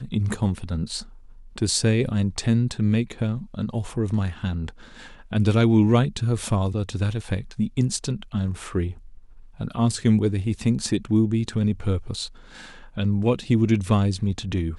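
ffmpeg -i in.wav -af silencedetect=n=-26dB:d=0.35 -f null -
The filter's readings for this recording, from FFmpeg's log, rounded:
silence_start: 1.00
silence_end: 1.58 | silence_duration: 0.58
silence_start: 4.69
silence_end: 5.33 | silence_duration: 0.64
silence_start: 8.91
silence_end: 9.60 | silence_duration: 0.70
silence_start: 12.26
silence_end: 12.98 | silence_duration: 0.72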